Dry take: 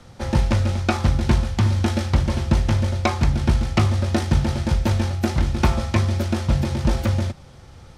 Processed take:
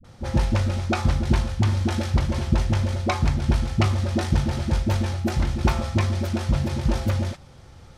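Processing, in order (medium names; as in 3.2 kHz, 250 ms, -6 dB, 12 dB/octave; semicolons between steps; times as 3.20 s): phase dispersion highs, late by 45 ms, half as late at 390 Hz; trim -2.5 dB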